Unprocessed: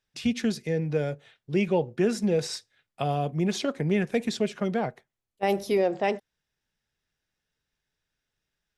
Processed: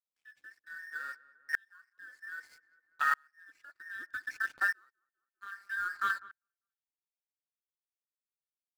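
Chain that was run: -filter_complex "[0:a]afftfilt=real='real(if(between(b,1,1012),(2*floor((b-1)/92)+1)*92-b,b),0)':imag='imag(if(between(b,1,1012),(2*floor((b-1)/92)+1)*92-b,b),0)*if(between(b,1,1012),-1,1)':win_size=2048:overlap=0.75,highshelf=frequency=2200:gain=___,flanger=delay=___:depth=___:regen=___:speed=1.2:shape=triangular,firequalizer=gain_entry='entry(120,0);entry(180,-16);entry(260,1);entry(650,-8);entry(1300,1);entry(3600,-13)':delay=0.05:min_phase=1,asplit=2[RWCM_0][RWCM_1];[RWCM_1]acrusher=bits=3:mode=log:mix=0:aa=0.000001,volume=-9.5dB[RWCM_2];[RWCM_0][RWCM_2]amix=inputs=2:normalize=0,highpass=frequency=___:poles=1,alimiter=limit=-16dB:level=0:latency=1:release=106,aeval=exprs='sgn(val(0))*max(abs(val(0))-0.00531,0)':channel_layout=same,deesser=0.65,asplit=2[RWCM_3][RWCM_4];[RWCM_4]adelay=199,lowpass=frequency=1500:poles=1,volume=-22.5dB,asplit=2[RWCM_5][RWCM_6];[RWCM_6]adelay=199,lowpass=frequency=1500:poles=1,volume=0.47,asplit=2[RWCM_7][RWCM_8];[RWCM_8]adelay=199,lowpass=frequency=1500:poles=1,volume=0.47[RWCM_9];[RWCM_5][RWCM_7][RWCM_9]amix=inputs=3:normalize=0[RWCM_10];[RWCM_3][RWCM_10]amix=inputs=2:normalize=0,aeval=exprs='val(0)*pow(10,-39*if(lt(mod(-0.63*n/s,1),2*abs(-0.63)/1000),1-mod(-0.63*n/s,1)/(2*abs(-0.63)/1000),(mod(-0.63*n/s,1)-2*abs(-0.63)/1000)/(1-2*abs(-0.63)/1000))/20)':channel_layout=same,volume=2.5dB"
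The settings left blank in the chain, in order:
5, 1.1, 5.2, -53, 400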